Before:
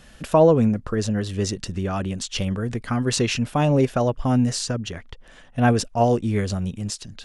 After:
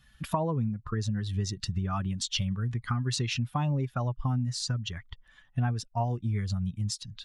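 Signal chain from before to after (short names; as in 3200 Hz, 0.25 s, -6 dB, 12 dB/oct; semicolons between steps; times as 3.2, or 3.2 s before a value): per-bin expansion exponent 1.5; graphic EQ 125/500/1000/4000 Hz +11/-6/+9/+6 dB; compressor 6:1, threshold -27 dBFS, peak gain reduction 18 dB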